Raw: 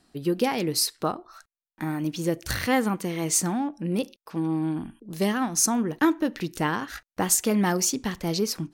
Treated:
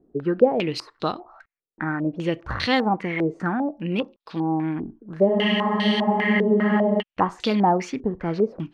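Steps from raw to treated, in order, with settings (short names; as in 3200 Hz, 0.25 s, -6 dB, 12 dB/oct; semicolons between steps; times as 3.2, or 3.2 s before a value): spectral freeze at 5.29, 1.70 s; stepped low-pass 5 Hz 430–3900 Hz; gain +1 dB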